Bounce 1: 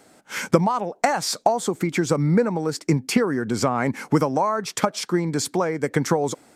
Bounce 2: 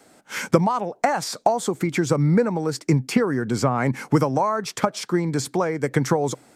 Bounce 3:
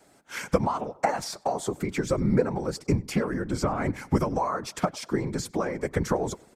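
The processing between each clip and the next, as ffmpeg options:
ffmpeg -i in.wav -filter_complex "[0:a]adynamicequalizer=threshold=0.00708:dfrequency=130:dqfactor=5.8:tfrequency=130:tqfactor=5.8:attack=5:release=100:ratio=0.375:range=3.5:mode=boostabove:tftype=bell,acrossover=split=710|2200[link_01][link_02][link_03];[link_03]alimiter=limit=-20dB:level=0:latency=1:release=188[link_04];[link_01][link_02][link_04]amix=inputs=3:normalize=0" out.wav
ffmpeg -i in.wav -filter_complex "[0:a]asplit=2[link_01][link_02];[link_02]adelay=98,lowpass=frequency=3500:poles=1,volume=-22.5dB,asplit=2[link_03][link_04];[link_04]adelay=98,lowpass=frequency=3500:poles=1,volume=0.47,asplit=2[link_05][link_06];[link_06]adelay=98,lowpass=frequency=3500:poles=1,volume=0.47[link_07];[link_01][link_03][link_05][link_07]amix=inputs=4:normalize=0,afftfilt=real='hypot(re,im)*cos(2*PI*random(0))':imag='hypot(re,im)*sin(2*PI*random(1))':win_size=512:overlap=0.75" out.wav

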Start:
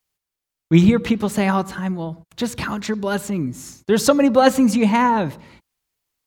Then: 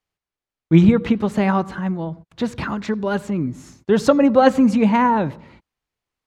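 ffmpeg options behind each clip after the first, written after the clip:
ffmpeg -i in.wav -af "aemphasis=mode=reproduction:type=75fm" out.wav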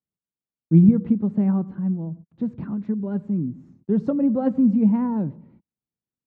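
ffmpeg -i in.wav -af "bandpass=frequency=190:width_type=q:width=1.7:csg=0" out.wav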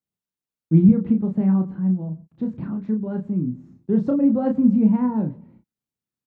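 ffmpeg -i in.wav -filter_complex "[0:a]asplit=2[link_01][link_02];[link_02]adelay=32,volume=-5dB[link_03];[link_01][link_03]amix=inputs=2:normalize=0" out.wav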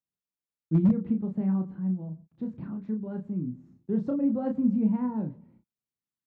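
ffmpeg -i in.wav -af "asoftclip=type=hard:threshold=-7dB,volume=-8dB" out.wav

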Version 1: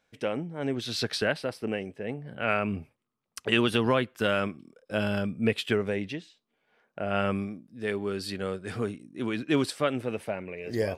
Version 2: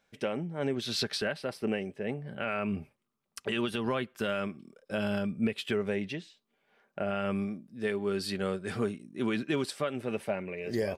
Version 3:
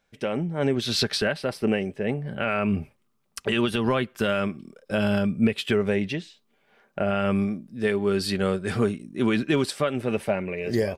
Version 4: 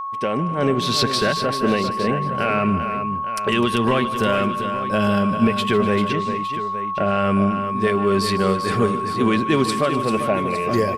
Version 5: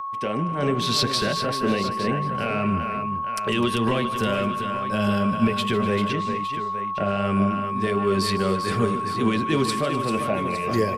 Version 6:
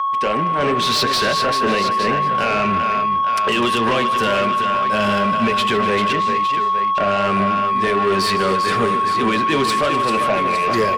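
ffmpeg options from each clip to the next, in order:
ffmpeg -i in.wav -af "aecho=1:1:5.1:0.3,alimiter=limit=-19.5dB:level=0:latency=1:release=315" out.wav
ffmpeg -i in.wav -af "lowshelf=frequency=69:gain=11.5,dynaudnorm=framelen=180:gausssize=3:maxgain=7dB" out.wav
ffmpeg -i in.wav -filter_complex "[0:a]aeval=exprs='val(0)+0.0316*sin(2*PI*1100*n/s)':channel_layout=same,asplit=2[link_01][link_02];[link_02]asoftclip=type=tanh:threshold=-19.5dB,volume=-8dB[link_03];[link_01][link_03]amix=inputs=2:normalize=0,aecho=1:1:152|253|393|861:0.168|0.126|0.355|0.224,volume=1.5dB" out.wav
ffmpeg -i in.wav -filter_complex "[0:a]acrossover=split=230|830|2600[link_01][link_02][link_03][link_04];[link_02]flanger=delay=17.5:depth=4.6:speed=2.6[link_05];[link_03]alimiter=limit=-22dB:level=0:latency=1[link_06];[link_01][link_05][link_06][link_04]amix=inputs=4:normalize=0,volume=-1.5dB" out.wav
ffmpeg -i in.wav -filter_complex "[0:a]asplit=2[link_01][link_02];[link_02]highpass=frequency=720:poles=1,volume=19dB,asoftclip=type=tanh:threshold=-8.5dB[link_03];[link_01][link_03]amix=inputs=2:normalize=0,lowpass=frequency=3900:poles=1,volume=-6dB" out.wav

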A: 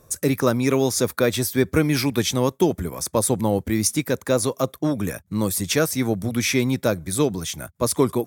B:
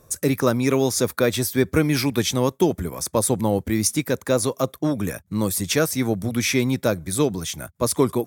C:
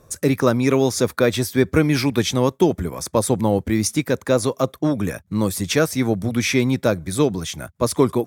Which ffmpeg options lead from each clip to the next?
ffmpeg -i in.wav -af anull out.wav
ffmpeg -i in.wav -af "highshelf=frequency=7900:gain=-9.5,volume=2.5dB" out.wav

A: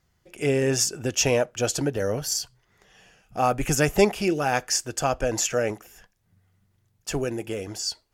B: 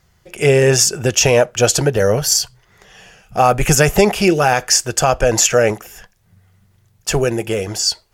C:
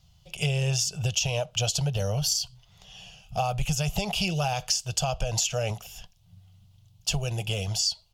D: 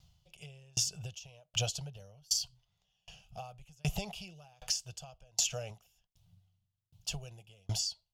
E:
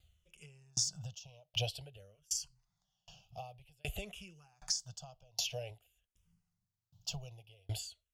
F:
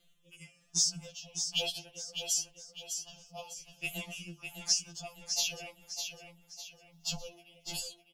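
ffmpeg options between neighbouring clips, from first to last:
ffmpeg -i in.wav -af "equalizer=frequency=280:width=5.4:gain=-12.5,alimiter=level_in=13dB:limit=-1dB:release=50:level=0:latency=1,volume=-1dB" out.wav
ffmpeg -i in.wav -af "firequalizer=gain_entry='entry(170,0);entry(260,-25);entry(670,-5);entry(1800,-20);entry(2900,3);entry(8300,-7)':delay=0.05:min_phase=1,acompressor=threshold=-22dB:ratio=10,volume=-1dB" out.wav
ffmpeg -i in.wav -af "aeval=exprs='val(0)*pow(10,-36*if(lt(mod(1.3*n/s,1),2*abs(1.3)/1000),1-mod(1.3*n/s,1)/(2*abs(1.3)/1000),(mod(1.3*n/s,1)-2*abs(1.3)/1000)/(1-2*abs(1.3)/1000))/20)':channel_layout=same,volume=-2dB" out.wav
ffmpeg -i in.wav -filter_complex "[0:a]asplit=2[link_01][link_02];[link_02]afreqshift=-0.51[link_03];[link_01][link_03]amix=inputs=2:normalize=1,volume=-1dB" out.wav
ffmpeg -i in.wav -af "aecho=1:1:604|1208|1812|2416|3020:0.447|0.174|0.0679|0.0265|0.0103,afftfilt=real='re*2.83*eq(mod(b,8),0)':imag='im*2.83*eq(mod(b,8),0)':win_size=2048:overlap=0.75,volume=8dB" out.wav

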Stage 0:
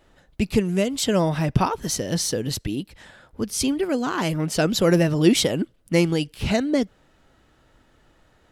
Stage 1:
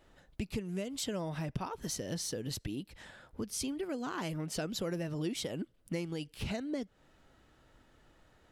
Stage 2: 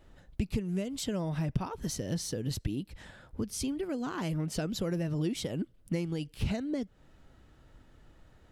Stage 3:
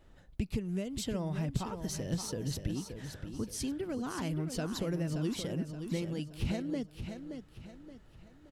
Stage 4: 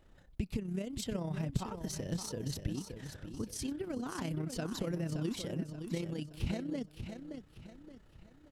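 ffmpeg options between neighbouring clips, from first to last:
ffmpeg -i in.wav -af "acompressor=threshold=-30dB:ratio=4,volume=-5.5dB" out.wav
ffmpeg -i in.wav -af "lowshelf=frequency=230:gain=9.5" out.wav
ffmpeg -i in.wav -af "aecho=1:1:574|1148|1722|2296:0.398|0.155|0.0606|0.0236,volume=-2.5dB" out.wav
ffmpeg -i in.wav -af "tremolo=f=32:d=0.519" out.wav

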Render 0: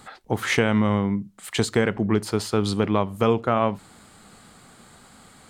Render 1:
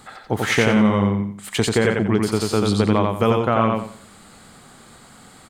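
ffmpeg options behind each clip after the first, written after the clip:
ffmpeg -i in.wav -af "aecho=1:1:89|178|267|356:0.708|0.212|0.0637|0.0191,volume=2dB" out.wav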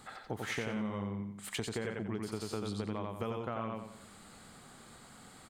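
ffmpeg -i in.wav -af "acompressor=threshold=-29dB:ratio=3,volume=-8.5dB" out.wav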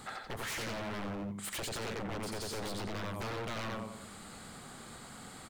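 ffmpeg -i in.wav -af "aeval=exprs='0.0112*(abs(mod(val(0)/0.0112+3,4)-2)-1)':channel_layout=same,volume=5.5dB" out.wav

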